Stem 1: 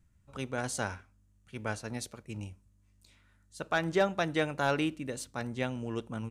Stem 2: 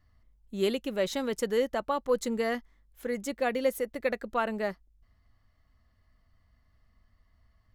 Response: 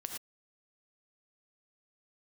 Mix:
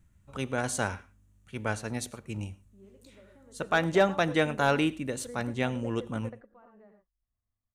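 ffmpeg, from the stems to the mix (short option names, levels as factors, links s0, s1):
-filter_complex "[0:a]equalizer=f=5000:t=o:w=0.35:g=-5,volume=1.41,asplit=3[s0][s1][s2];[s1]volume=0.2[s3];[1:a]lowpass=1300,acompressor=threshold=0.0282:ratio=6,adelay=2200,volume=0.335,asplit=2[s4][s5];[s5]volume=0.266[s6];[s2]apad=whole_len=438683[s7];[s4][s7]sidechaingate=range=0.0224:threshold=0.002:ratio=16:detection=peak[s8];[2:a]atrim=start_sample=2205[s9];[s3][s6]amix=inputs=2:normalize=0[s10];[s10][s9]afir=irnorm=-1:irlink=0[s11];[s0][s8][s11]amix=inputs=3:normalize=0"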